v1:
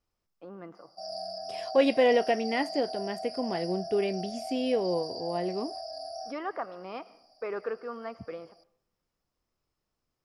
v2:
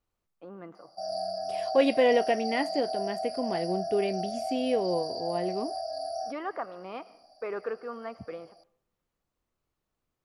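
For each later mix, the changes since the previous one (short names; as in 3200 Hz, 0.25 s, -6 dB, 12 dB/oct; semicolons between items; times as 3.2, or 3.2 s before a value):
background +5.5 dB; master: add bell 5200 Hz -11.5 dB 0.2 oct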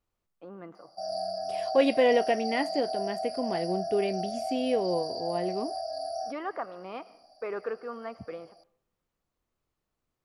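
none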